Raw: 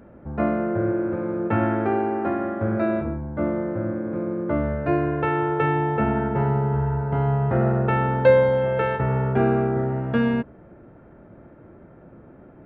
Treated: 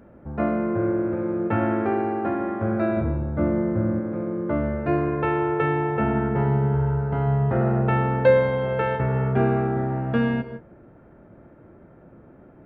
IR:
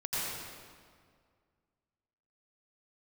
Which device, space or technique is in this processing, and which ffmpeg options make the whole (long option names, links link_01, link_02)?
keyed gated reverb: -filter_complex "[0:a]asplit=3[link_01][link_02][link_03];[1:a]atrim=start_sample=2205[link_04];[link_02][link_04]afir=irnorm=-1:irlink=0[link_05];[link_03]apad=whole_len=558182[link_06];[link_05][link_06]sidechaingate=range=-33dB:threshold=-41dB:ratio=16:detection=peak,volume=-16.5dB[link_07];[link_01][link_07]amix=inputs=2:normalize=0,asettb=1/sr,asplit=3[link_08][link_09][link_10];[link_08]atrim=end=2.974[link_11];[link_09]atrim=start=2.97:end=4,asetpts=PTS-STARTPTS,afade=type=in:duration=0.004:curve=qsin,afade=type=out:start_time=1.026:duration=0.004:curve=qsin,lowshelf=frequency=210:gain=8.5[link_12];[link_10]atrim=start=3.996[link_13];[link_11][link_12]acrossfade=duration=0.004:curve1=hsin:curve2=qsin[link_14];[link_14][link_13]acrossfade=duration=0.004:curve1=qsin:curve2=hsin,volume=-2dB"